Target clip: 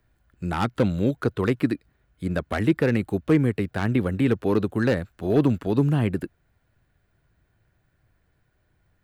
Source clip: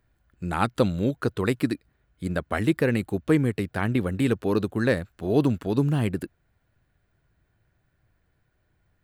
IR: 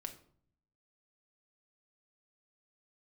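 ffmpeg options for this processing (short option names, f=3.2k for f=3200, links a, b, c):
-filter_complex "[0:a]acrossover=split=3200[a][b];[b]acompressor=threshold=-50dB:ratio=4:attack=1:release=60[c];[a][c]amix=inputs=2:normalize=0,acrossover=split=370|4100[d][e][f];[e]asoftclip=type=hard:threshold=-22.5dB[g];[d][g][f]amix=inputs=3:normalize=0,volume=2dB"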